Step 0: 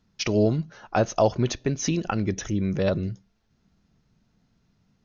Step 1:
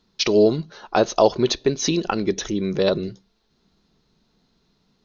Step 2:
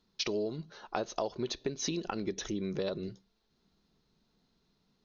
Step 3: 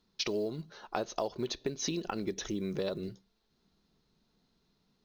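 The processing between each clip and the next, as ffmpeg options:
ffmpeg -i in.wav -af "equalizer=frequency=100:width_type=o:width=0.67:gain=-11,equalizer=frequency=400:width_type=o:width=0.67:gain=8,equalizer=frequency=1000:width_type=o:width=0.67:gain=5,equalizer=frequency=4000:width_type=o:width=0.67:gain=12,volume=1dB" out.wav
ffmpeg -i in.wav -af "acompressor=threshold=-22dB:ratio=6,volume=-8.5dB" out.wav
ffmpeg -i in.wav -af "acrusher=bits=9:mode=log:mix=0:aa=0.000001" out.wav

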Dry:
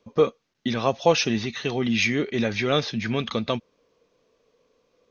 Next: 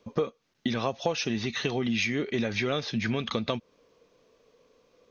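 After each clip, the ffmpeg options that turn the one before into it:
ffmpeg -i in.wav -af "acompressor=threshold=-28dB:ratio=6,volume=3dB" out.wav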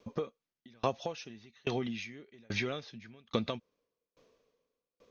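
ffmpeg -i in.wav -af "aeval=exprs='val(0)*pow(10,-34*if(lt(mod(1.2*n/s,1),2*abs(1.2)/1000),1-mod(1.2*n/s,1)/(2*abs(1.2)/1000),(mod(1.2*n/s,1)-2*abs(1.2)/1000)/(1-2*abs(1.2)/1000))/20)':channel_layout=same" out.wav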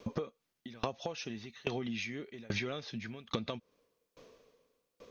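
ffmpeg -i in.wav -af "acompressor=threshold=-43dB:ratio=5,volume=9dB" out.wav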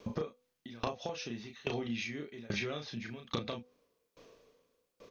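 ffmpeg -i in.wav -filter_complex "[0:a]asplit=2[link_01][link_02];[link_02]adelay=34,volume=-5dB[link_03];[link_01][link_03]amix=inputs=2:normalize=0,bandreject=frequency=248.3:width_type=h:width=4,bandreject=frequency=496.6:width_type=h:width=4,bandreject=frequency=744.9:width_type=h:width=4,volume=-1dB" out.wav

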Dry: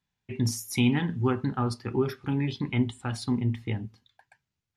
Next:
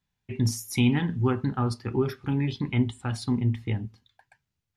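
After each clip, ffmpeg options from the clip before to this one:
ffmpeg -i in.wav -af "lowshelf=frequency=92:gain=7" out.wav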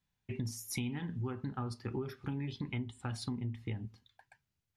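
ffmpeg -i in.wav -af "acompressor=threshold=-32dB:ratio=6,volume=-3dB" out.wav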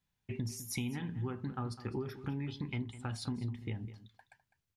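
ffmpeg -i in.wav -filter_complex "[0:a]asplit=2[link_01][link_02];[link_02]adelay=204.1,volume=-14dB,highshelf=frequency=4000:gain=-4.59[link_03];[link_01][link_03]amix=inputs=2:normalize=0" out.wav

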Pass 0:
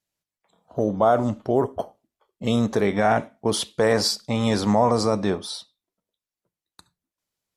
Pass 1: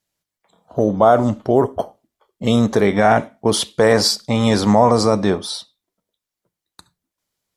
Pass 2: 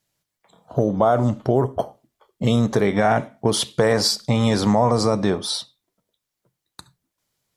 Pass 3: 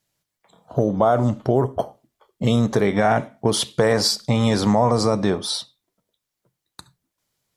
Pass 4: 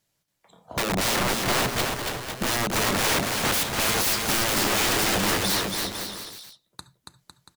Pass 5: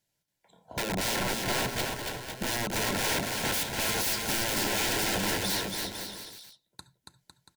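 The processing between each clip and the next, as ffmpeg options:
ffmpeg -i in.wav -af "bandreject=frequency=2600:width=24,volume=6dB" out.wav
ffmpeg -i in.wav -af "equalizer=frequency=130:width_type=o:width=0.25:gain=9.5,acompressor=threshold=-23dB:ratio=2,volume=3dB" out.wav
ffmpeg -i in.wav -af anull out.wav
ffmpeg -i in.wav -af "aeval=exprs='(mod(9.44*val(0)+1,2)-1)/9.44':channel_layout=same,aecho=1:1:280|504|683.2|826.6|941.2:0.631|0.398|0.251|0.158|0.1" out.wav
ffmpeg -i in.wav -af "asuperstop=centerf=1200:order=12:qfactor=5.5,volume=-5.5dB" out.wav

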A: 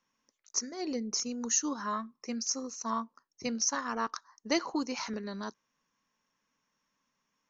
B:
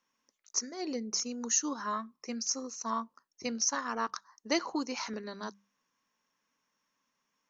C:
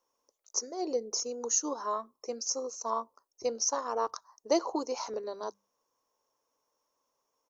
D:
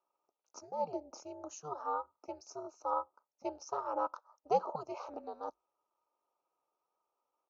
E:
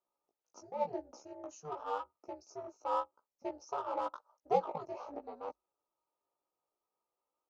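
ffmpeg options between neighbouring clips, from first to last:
ffmpeg -i in.wav -af "lowshelf=frequency=130:gain=-8.5,bandreject=frequency=50:width_type=h:width=6,bandreject=frequency=100:width_type=h:width=6,bandreject=frequency=150:width_type=h:width=6,bandreject=frequency=200:width_type=h:width=6" out.wav
ffmpeg -i in.wav -af "firequalizer=gain_entry='entry(120,0);entry(180,-15);entry(330,2);entry(470,9);entry(980,3);entry(1700,-12);entry(5200,-1);entry(9900,4)':delay=0.05:min_phase=1" out.wav
ffmpeg -i in.wav -filter_complex "[0:a]asplit=3[link_01][link_02][link_03];[link_01]bandpass=frequency=730:width_type=q:width=8,volume=0dB[link_04];[link_02]bandpass=frequency=1090:width_type=q:width=8,volume=-6dB[link_05];[link_03]bandpass=frequency=2440:width_type=q:width=8,volume=-9dB[link_06];[link_04][link_05][link_06]amix=inputs=3:normalize=0,aeval=exprs='val(0)*sin(2*PI*150*n/s)':channel_layout=same,volume=8dB" out.wav
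ffmpeg -i in.wav -filter_complex "[0:a]asplit=2[link_01][link_02];[link_02]adynamicsmooth=sensitivity=6:basefreq=670,volume=0dB[link_03];[link_01][link_03]amix=inputs=2:normalize=0,flanger=delay=16:depth=2.1:speed=0.91,volume=-2.5dB" out.wav

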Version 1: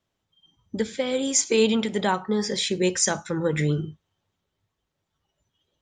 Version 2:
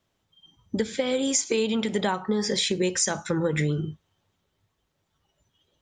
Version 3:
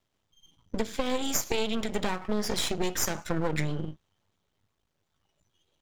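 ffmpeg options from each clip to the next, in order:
ffmpeg -i in.wav -af "acompressor=threshold=-26dB:ratio=6,volume=4.5dB" out.wav
ffmpeg -i in.wav -af "aeval=exprs='max(val(0),0)':channel_layout=same" out.wav

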